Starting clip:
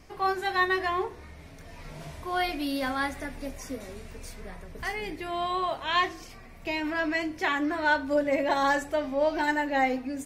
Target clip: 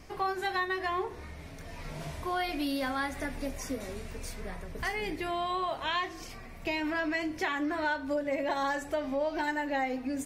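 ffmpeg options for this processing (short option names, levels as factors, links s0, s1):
-af "acompressor=threshold=0.0282:ratio=4,volume=1.26"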